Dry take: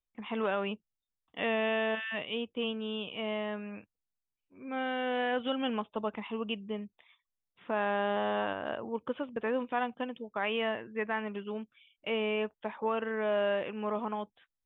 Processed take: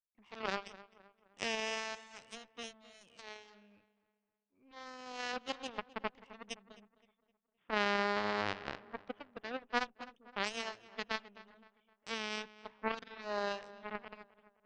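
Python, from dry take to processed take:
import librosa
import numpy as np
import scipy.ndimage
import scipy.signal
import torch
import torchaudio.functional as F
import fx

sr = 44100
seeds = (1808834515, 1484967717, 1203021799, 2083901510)

y = fx.cheby_harmonics(x, sr, harmonics=(3, 6), levels_db=(-9, -39), full_scale_db=-18.5)
y = fx.echo_filtered(y, sr, ms=259, feedback_pct=44, hz=2800.0, wet_db=-17.0)
y = F.gain(torch.from_numpy(y), 3.5).numpy()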